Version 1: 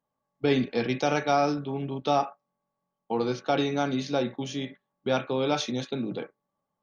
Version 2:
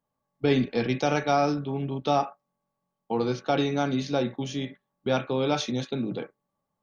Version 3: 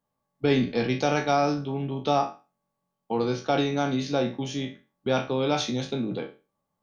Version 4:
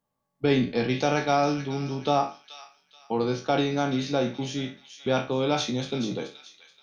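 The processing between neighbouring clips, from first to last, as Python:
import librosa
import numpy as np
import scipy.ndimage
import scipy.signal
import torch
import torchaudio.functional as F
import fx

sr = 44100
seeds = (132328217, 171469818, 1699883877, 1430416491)

y1 = fx.low_shelf(x, sr, hz=130.0, db=7.0)
y2 = fx.spec_trails(y1, sr, decay_s=0.31)
y3 = fx.echo_wet_highpass(y2, sr, ms=429, feedback_pct=33, hz=2100.0, wet_db=-8)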